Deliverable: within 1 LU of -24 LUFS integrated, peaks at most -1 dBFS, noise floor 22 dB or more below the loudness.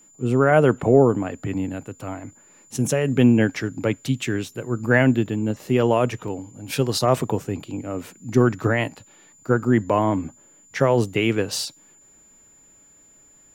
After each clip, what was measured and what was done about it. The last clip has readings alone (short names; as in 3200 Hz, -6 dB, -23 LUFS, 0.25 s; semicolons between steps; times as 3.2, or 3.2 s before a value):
dropouts 2; longest dropout 1.7 ms; steady tone 7100 Hz; tone level -51 dBFS; loudness -21.5 LUFS; peak -3.0 dBFS; loudness target -24.0 LUFS
-> interpolate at 5.26/6.28, 1.7 ms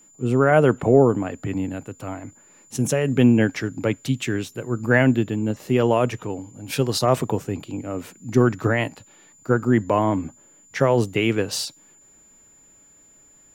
dropouts 0; steady tone 7100 Hz; tone level -51 dBFS
-> notch 7100 Hz, Q 30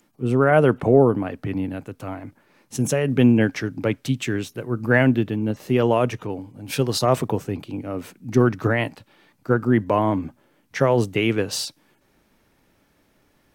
steady tone none; loudness -21.5 LUFS; peak -3.0 dBFS; loudness target -24.0 LUFS
-> gain -2.5 dB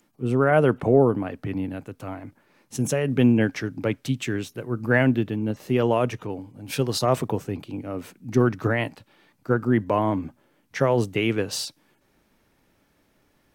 loudness -24.0 LUFS; peak -5.5 dBFS; noise floor -66 dBFS